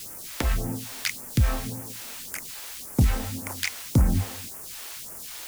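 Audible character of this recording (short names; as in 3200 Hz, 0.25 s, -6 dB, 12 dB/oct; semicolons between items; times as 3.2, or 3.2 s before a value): a quantiser's noise floor 6-bit, dither triangular; phasing stages 2, 1.8 Hz, lowest notch 120–3600 Hz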